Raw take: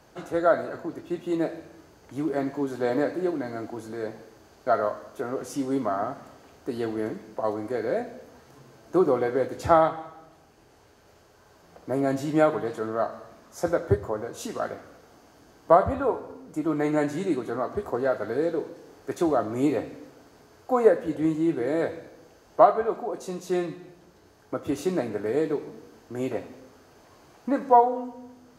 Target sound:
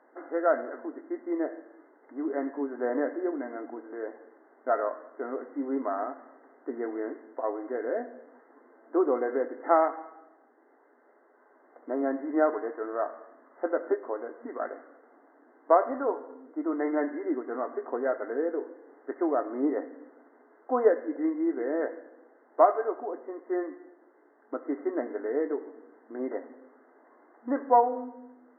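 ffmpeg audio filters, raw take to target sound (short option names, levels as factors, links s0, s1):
-af "afftfilt=real='re*between(b*sr/4096,230,2100)':imag='im*between(b*sr/4096,230,2100)':win_size=4096:overlap=0.75,volume=0.668"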